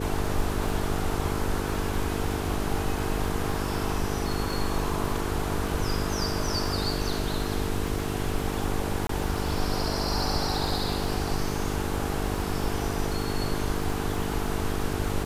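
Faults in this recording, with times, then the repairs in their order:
mains buzz 50 Hz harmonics 9 −32 dBFS
surface crackle 47 per second −34 dBFS
0:09.07–0:09.09: drop-out 23 ms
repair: click removal
hum removal 50 Hz, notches 9
repair the gap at 0:09.07, 23 ms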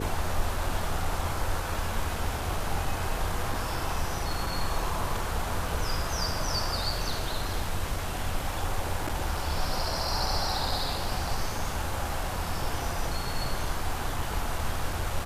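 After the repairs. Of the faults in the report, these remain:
none of them is left

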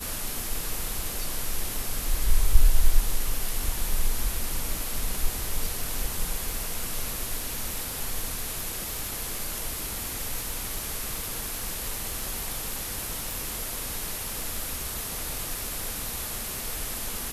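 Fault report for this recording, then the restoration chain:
surface crackle 24 per second −31 dBFS
0:13.31: click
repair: click removal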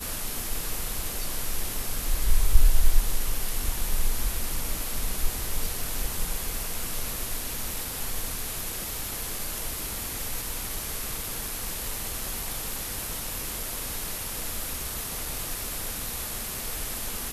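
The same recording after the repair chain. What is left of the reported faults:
none of them is left

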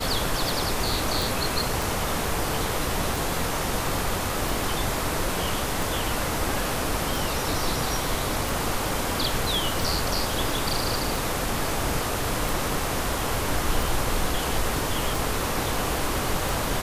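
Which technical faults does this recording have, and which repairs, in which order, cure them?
scratch tick 45 rpm
0:01.22: click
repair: click removal

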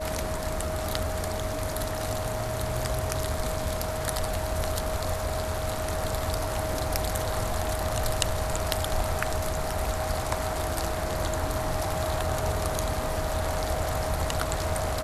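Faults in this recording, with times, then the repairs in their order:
whistle 630 Hz −33 dBFS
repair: notch filter 630 Hz, Q 30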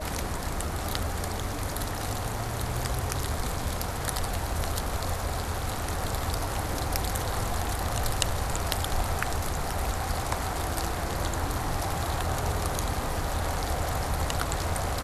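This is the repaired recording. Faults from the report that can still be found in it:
none of them is left

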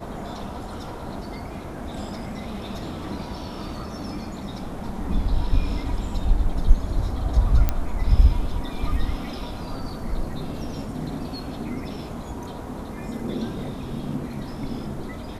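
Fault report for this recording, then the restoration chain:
0:07.69: click −8 dBFS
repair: click removal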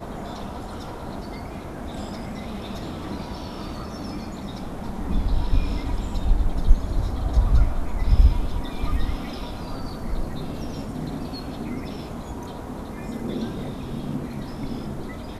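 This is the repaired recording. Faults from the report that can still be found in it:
none of them is left

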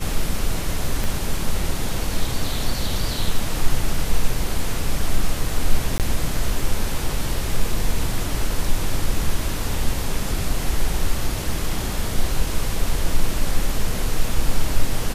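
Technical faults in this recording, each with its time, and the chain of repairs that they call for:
0:01.04: click
0:05.98–0:06.00: drop-out 18 ms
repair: click removal
repair the gap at 0:05.98, 18 ms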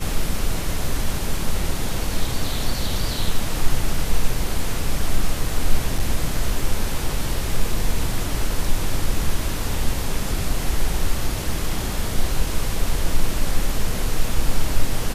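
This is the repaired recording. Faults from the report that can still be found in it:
0:01.04: click

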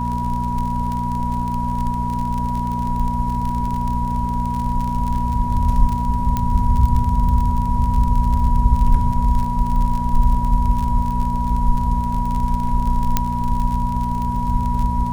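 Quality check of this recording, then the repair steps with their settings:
surface crackle 37 per second −23 dBFS
mains hum 60 Hz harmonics 4 −24 dBFS
whistle 970 Hz −23 dBFS
0:06.37: click −8 dBFS
0:13.17: click −2 dBFS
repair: click removal
hum removal 60 Hz, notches 4
notch filter 970 Hz, Q 30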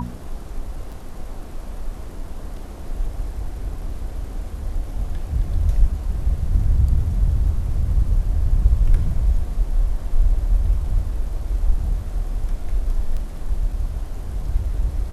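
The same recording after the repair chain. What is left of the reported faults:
0:13.17: click

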